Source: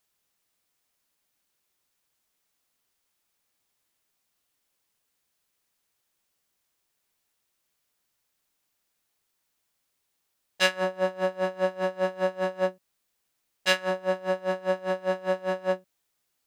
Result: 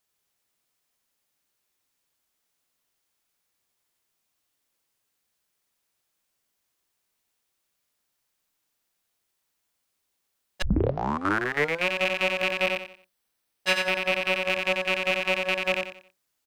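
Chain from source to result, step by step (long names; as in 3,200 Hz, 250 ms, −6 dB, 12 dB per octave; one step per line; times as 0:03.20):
loose part that buzzes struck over −40 dBFS, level −11 dBFS
0:12.56–0:14.34: notch filter 6,900 Hz, Q 7.4
repeating echo 90 ms, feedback 30%, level −4 dB
0:10.62: tape start 1.26 s
level −2 dB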